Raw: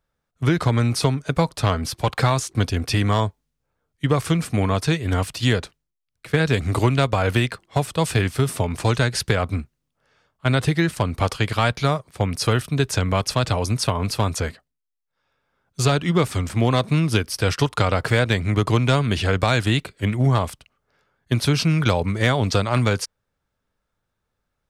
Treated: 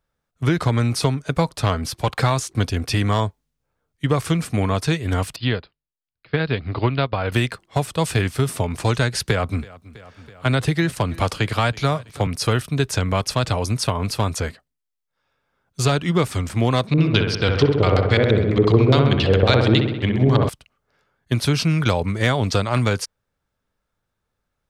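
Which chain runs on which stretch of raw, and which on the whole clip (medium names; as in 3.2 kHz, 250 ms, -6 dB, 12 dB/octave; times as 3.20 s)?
5.36–7.32 s: Chebyshev low-pass 5 kHz, order 8 + upward expansion, over -35 dBFS
9.25–12.27 s: feedback delay 327 ms, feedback 51%, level -23.5 dB + three bands compressed up and down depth 40%
16.87–20.49 s: LFO low-pass square 7.3 Hz 430–4200 Hz + feedback echo behind a low-pass 64 ms, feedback 64%, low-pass 2.1 kHz, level -3.5 dB
whole clip: none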